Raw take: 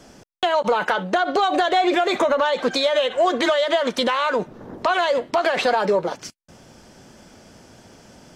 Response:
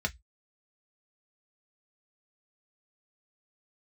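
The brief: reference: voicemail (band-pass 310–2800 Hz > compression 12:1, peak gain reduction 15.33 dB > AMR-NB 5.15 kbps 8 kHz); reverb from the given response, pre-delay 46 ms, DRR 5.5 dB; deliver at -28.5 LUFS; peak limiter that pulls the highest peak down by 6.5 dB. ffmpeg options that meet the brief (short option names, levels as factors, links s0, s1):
-filter_complex "[0:a]alimiter=limit=0.168:level=0:latency=1,asplit=2[s0][s1];[1:a]atrim=start_sample=2205,adelay=46[s2];[s1][s2]afir=irnorm=-1:irlink=0,volume=0.266[s3];[s0][s3]amix=inputs=2:normalize=0,highpass=310,lowpass=2800,acompressor=threshold=0.0251:ratio=12,volume=2.99" -ar 8000 -c:a libopencore_amrnb -b:a 5150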